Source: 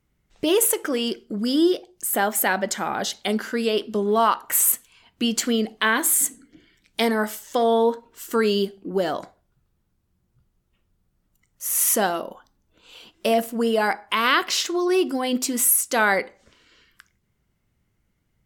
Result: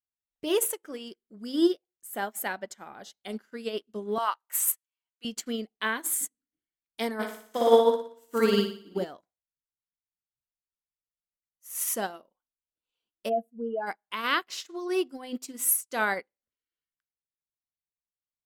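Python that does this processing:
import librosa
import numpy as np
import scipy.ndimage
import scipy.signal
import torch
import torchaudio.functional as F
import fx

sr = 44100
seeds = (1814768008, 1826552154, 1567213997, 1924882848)

y = fx.highpass(x, sr, hz=710.0, slope=12, at=(4.18, 5.25))
y = fx.room_flutter(y, sr, wall_m=10.1, rt60_s=1.2, at=(7.19, 9.03), fade=0.02)
y = fx.spec_expand(y, sr, power=2.2, at=(13.28, 13.86), fade=0.02)
y = fx.upward_expand(y, sr, threshold_db=-41.0, expansion=2.5)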